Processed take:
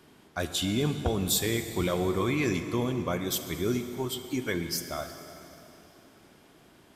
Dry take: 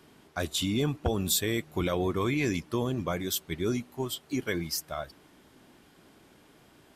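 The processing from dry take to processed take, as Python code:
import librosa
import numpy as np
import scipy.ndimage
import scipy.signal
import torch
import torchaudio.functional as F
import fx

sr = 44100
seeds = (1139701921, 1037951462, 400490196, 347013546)

y = fx.rev_plate(x, sr, seeds[0], rt60_s=3.3, hf_ratio=0.9, predelay_ms=0, drr_db=7.5)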